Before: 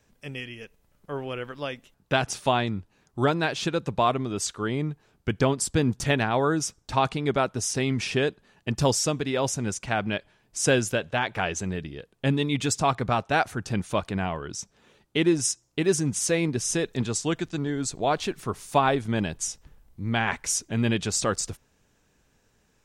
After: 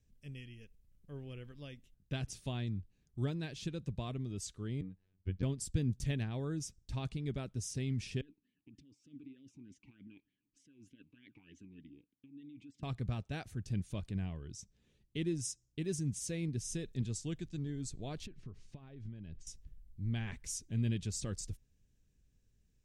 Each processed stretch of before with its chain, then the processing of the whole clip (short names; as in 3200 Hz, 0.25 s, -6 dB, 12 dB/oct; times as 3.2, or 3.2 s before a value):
4.81–5.43 LPF 2900 Hz + robotiser 93.9 Hz
8.21–12.83 negative-ratio compressor -31 dBFS + vowel sweep i-u 3.3 Hz
18.26–19.47 notch 3500 Hz, Q 24 + compressor 20:1, threshold -32 dBFS + air absorption 160 m
whole clip: passive tone stack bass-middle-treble 10-0-1; notch 1400 Hz, Q 14; gain +6 dB